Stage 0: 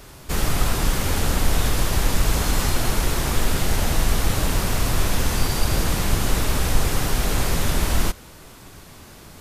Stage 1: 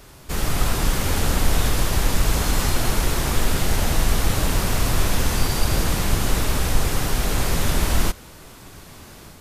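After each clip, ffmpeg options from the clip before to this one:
-af "dynaudnorm=f=320:g=3:m=4dB,volume=-2.5dB"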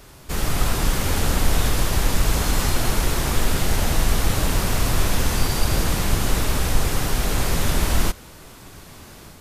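-af anull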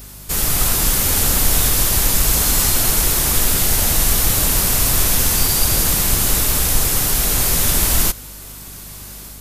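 -af "aemphasis=mode=production:type=75kf,aeval=exprs='val(0)+0.0112*(sin(2*PI*50*n/s)+sin(2*PI*2*50*n/s)/2+sin(2*PI*3*50*n/s)/3+sin(2*PI*4*50*n/s)/4+sin(2*PI*5*50*n/s)/5)':c=same"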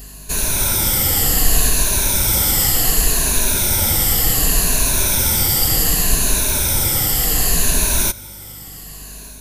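-af "afftfilt=real='re*pow(10,11/40*sin(2*PI*(1.5*log(max(b,1)*sr/1024/100)/log(2)-(-0.67)*(pts-256)/sr)))':imag='im*pow(10,11/40*sin(2*PI*(1.5*log(max(b,1)*sr/1024/100)/log(2)-(-0.67)*(pts-256)/sr)))':win_size=1024:overlap=0.75,bandreject=f=1.2k:w=8.3,volume=-1.5dB"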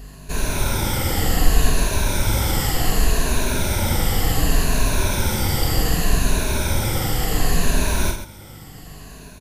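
-af "lowpass=f=1.9k:p=1,aecho=1:1:46.65|131.2:0.562|0.316"

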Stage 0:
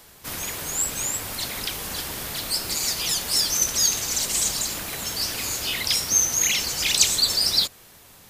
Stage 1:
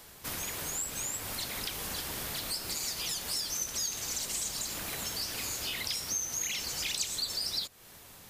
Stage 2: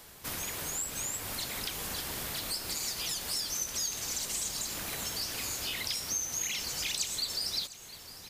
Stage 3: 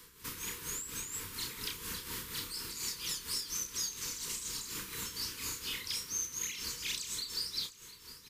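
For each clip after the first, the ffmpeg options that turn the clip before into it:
-af "acompressor=threshold=-32dB:ratio=3,volume=-2.5dB"
-af "aecho=1:1:706|1412|2118|2824|3530:0.15|0.0808|0.0436|0.0236|0.0127"
-filter_complex "[0:a]tremolo=f=4.2:d=0.61,asuperstop=centerf=680:order=20:qfactor=1.8,asplit=2[a][b];[b]adelay=31,volume=-6dB[c];[a][c]amix=inputs=2:normalize=0,volume=-2.5dB"

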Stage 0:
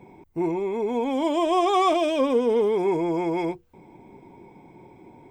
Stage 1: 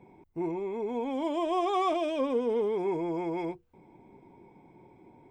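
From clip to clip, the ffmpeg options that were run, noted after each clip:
-af "highshelf=f=4.3k:g=-6.5,volume=-7dB"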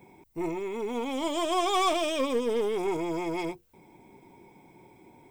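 -af "crystalizer=i=5.5:c=0,aeval=exprs='0.158*(cos(1*acos(clip(val(0)/0.158,-1,1)))-cos(1*PI/2))+0.0112*(cos(6*acos(clip(val(0)/0.158,-1,1)))-cos(6*PI/2))':c=same"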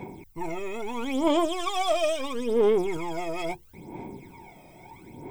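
-af "areverse,acompressor=threshold=-34dB:ratio=6,areverse,aphaser=in_gain=1:out_gain=1:delay=1.6:decay=0.71:speed=0.75:type=sinusoidal,volume=6dB"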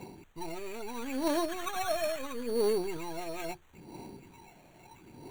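-af "acrusher=samples=9:mix=1:aa=0.000001,asuperstop=centerf=5200:order=8:qfactor=7.8,volume=-7dB"

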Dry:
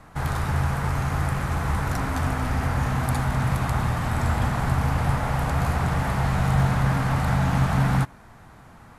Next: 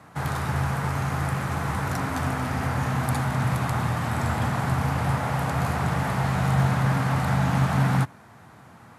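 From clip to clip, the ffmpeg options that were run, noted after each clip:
-af "highpass=f=91:w=0.5412,highpass=f=91:w=1.3066"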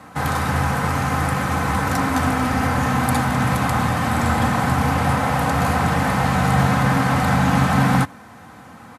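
-af "aecho=1:1:3.9:0.46,volume=7dB"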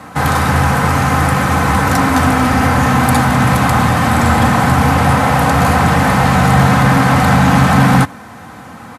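-af "asoftclip=type=tanh:threshold=-9.5dB,volume=8.5dB"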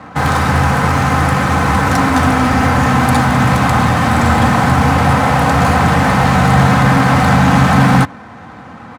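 -af "adynamicsmooth=sensitivity=5:basefreq=3.3k"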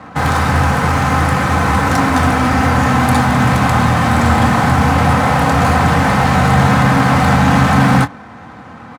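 -filter_complex "[0:a]asplit=2[a][b];[b]adelay=25,volume=-12dB[c];[a][c]amix=inputs=2:normalize=0,volume=-1dB"

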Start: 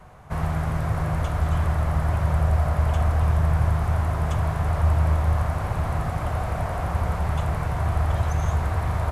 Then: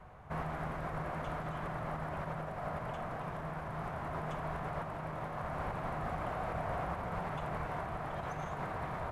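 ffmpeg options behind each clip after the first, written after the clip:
-af "bass=f=250:g=-2,treble=f=4k:g=-11,alimiter=limit=-19.5dB:level=0:latency=1:release=81,afftfilt=real='re*lt(hypot(re,im),0.282)':imag='im*lt(hypot(re,im),0.282)':win_size=1024:overlap=0.75,volume=-5.5dB"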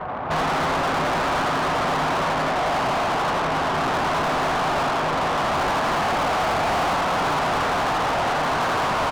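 -filter_complex "[0:a]asplit=7[a][b][c][d][e][f][g];[b]adelay=83,afreqshift=110,volume=-4dB[h];[c]adelay=166,afreqshift=220,volume=-10dB[i];[d]adelay=249,afreqshift=330,volume=-16dB[j];[e]adelay=332,afreqshift=440,volume=-22.1dB[k];[f]adelay=415,afreqshift=550,volume=-28.1dB[l];[g]adelay=498,afreqshift=660,volume=-34.1dB[m];[a][h][i][j][k][l][m]amix=inputs=7:normalize=0,adynamicsmooth=sensitivity=6:basefreq=1.3k,asplit=2[n][o];[o]highpass=f=720:p=1,volume=31dB,asoftclip=type=tanh:threshold=-23.5dB[p];[n][p]amix=inputs=2:normalize=0,lowpass=f=5k:p=1,volume=-6dB,volume=7.5dB"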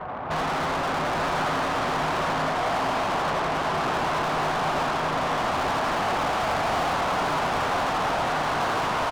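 -af "aecho=1:1:885:0.501,volume=-4dB"

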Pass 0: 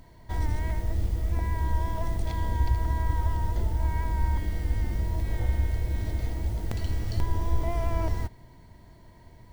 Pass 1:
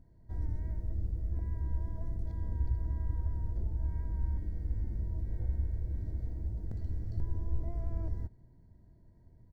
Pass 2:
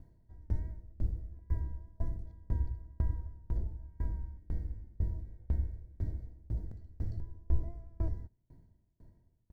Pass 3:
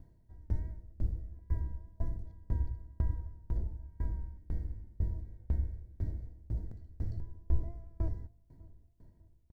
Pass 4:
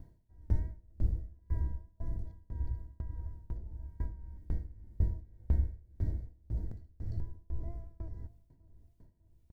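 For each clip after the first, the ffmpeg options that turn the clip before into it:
-af "firequalizer=gain_entry='entry(130,0);entry(1100,-18);entry(1600,-13);entry(2700,-28);entry(4600,-18);entry(13000,-23)':delay=0.05:min_phase=1,volume=-7dB"
-af "aeval=exprs='val(0)*pow(10,-30*if(lt(mod(2*n/s,1),2*abs(2)/1000),1-mod(2*n/s,1)/(2*abs(2)/1000),(mod(2*n/s,1)-2*abs(2)/1000)/(1-2*abs(2)/1000))/20)':c=same,volume=6dB"
-filter_complex "[0:a]asplit=2[a][b];[b]adelay=599,lowpass=f=1k:p=1,volume=-21.5dB,asplit=2[c][d];[d]adelay=599,lowpass=f=1k:p=1,volume=0.4,asplit=2[e][f];[f]adelay=599,lowpass=f=1k:p=1,volume=0.4[g];[a][c][e][g]amix=inputs=4:normalize=0"
-af "tremolo=f=1.8:d=0.79,volume=3.5dB"

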